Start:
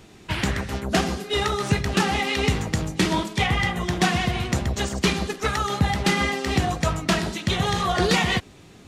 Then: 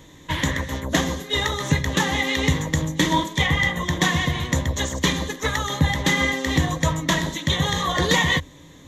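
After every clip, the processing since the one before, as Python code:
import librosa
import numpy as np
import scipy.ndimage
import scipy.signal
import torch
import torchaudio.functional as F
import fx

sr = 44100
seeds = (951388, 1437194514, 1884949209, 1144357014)

y = fx.ripple_eq(x, sr, per_octave=1.1, db=12)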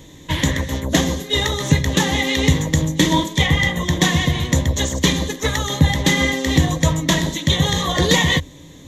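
y = fx.peak_eq(x, sr, hz=1300.0, db=-7.0, octaves=1.4)
y = F.gain(torch.from_numpy(y), 5.5).numpy()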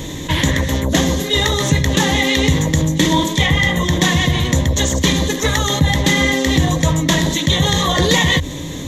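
y = fx.env_flatten(x, sr, amount_pct=50)
y = F.gain(torch.from_numpy(y), -1.5).numpy()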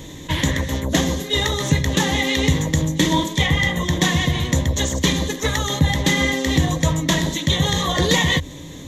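y = fx.upward_expand(x, sr, threshold_db=-25.0, expansion=1.5)
y = F.gain(torch.from_numpy(y), -1.5).numpy()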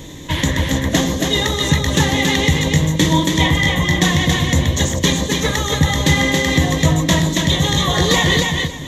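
y = fx.echo_feedback(x, sr, ms=277, feedback_pct=21, wet_db=-3.5)
y = F.gain(torch.from_numpy(y), 2.0).numpy()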